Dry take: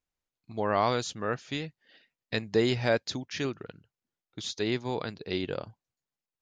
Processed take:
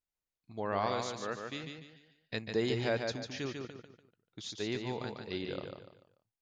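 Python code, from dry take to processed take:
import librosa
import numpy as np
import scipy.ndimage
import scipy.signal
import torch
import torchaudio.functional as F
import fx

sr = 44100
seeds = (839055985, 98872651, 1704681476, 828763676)

y = fx.low_shelf(x, sr, hz=110.0, db=-11.5, at=(0.86, 1.64))
y = fx.echo_feedback(y, sr, ms=146, feedback_pct=35, wet_db=-5)
y = y * 10.0 ** (-7.0 / 20.0)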